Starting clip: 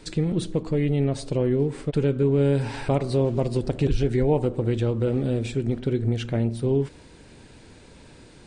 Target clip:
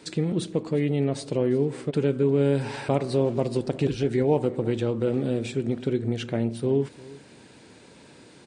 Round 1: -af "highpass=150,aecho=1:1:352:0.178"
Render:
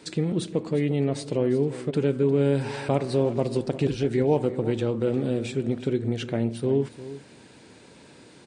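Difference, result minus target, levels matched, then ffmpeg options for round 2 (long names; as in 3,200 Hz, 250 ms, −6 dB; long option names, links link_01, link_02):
echo-to-direct +6 dB
-af "highpass=150,aecho=1:1:352:0.0891"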